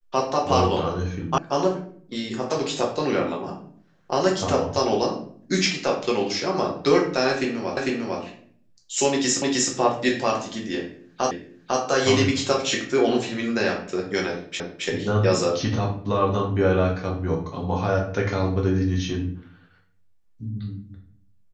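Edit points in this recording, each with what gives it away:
1.38 sound cut off
7.77 repeat of the last 0.45 s
9.42 repeat of the last 0.31 s
11.31 repeat of the last 0.5 s
14.6 repeat of the last 0.27 s

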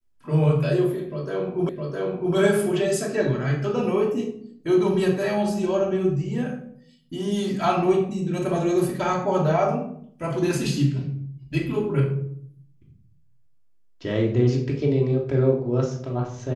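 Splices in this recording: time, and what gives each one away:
1.69 repeat of the last 0.66 s

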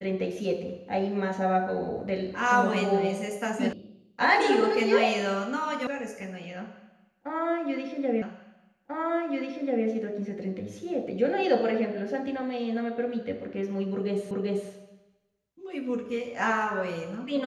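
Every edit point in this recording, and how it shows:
3.73 sound cut off
5.87 sound cut off
8.22 repeat of the last 1.64 s
14.31 repeat of the last 0.39 s

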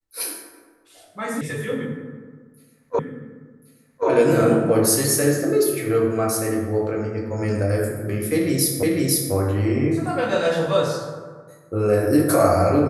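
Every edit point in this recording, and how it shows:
1.41 sound cut off
2.99 repeat of the last 1.08 s
8.83 repeat of the last 0.5 s

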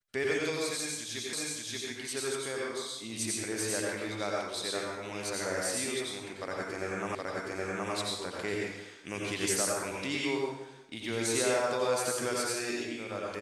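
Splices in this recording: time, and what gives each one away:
1.33 repeat of the last 0.58 s
7.15 repeat of the last 0.77 s

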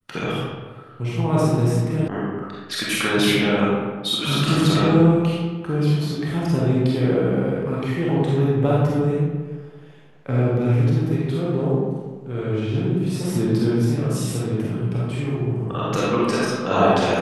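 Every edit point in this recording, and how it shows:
2.08 sound cut off

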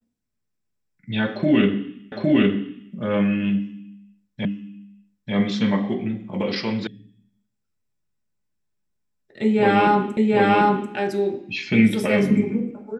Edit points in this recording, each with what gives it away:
2.12 repeat of the last 0.81 s
4.45 repeat of the last 0.89 s
6.87 sound cut off
10.17 repeat of the last 0.74 s

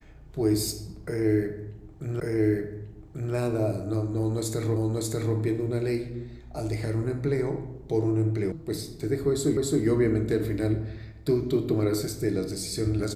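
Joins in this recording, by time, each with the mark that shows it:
2.2 repeat of the last 1.14 s
4.76 repeat of the last 0.59 s
8.52 sound cut off
9.57 repeat of the last 0.27 s

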